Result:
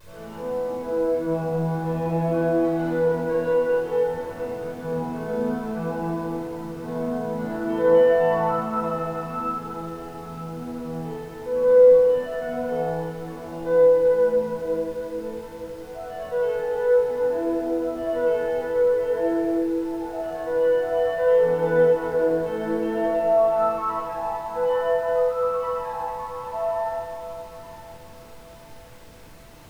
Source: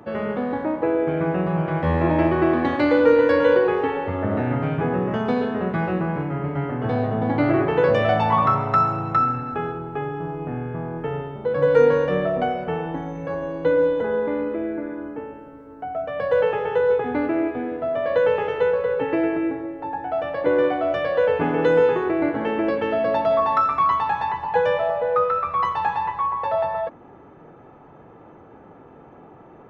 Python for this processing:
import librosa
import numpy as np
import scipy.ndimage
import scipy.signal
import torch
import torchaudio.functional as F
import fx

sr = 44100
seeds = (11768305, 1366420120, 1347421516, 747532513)

p1 = scipy.signal.sosfilt(scipy.signal.butter(2, 150.0, 'highpass', fs=sr, output='sos'), x)
p2 = fx.notch(p1, sr, hz=2000.0, q=27.0)
p3 = fx.resonator_bank(p2, sr, root=52, chord='sus4', decay_s=0.55)
p4 = fx.dmg_noise_colour(p3, sr, seeds[0], colour='pink', level_db=-56.0)
p5 = fx.vibrato(p4, sr, rate_hz=0.53, depth_cents=22.0)
p6 = p5 + fx.echo_feedback(p5, sr, ms=920, feedback_pct=39, wet_db=-14.5, dry=0)
y = fx.room_shoebox(p6, sr, seeds[1], volume_m3=3600.0, walls='mixed', distance_m=5.1)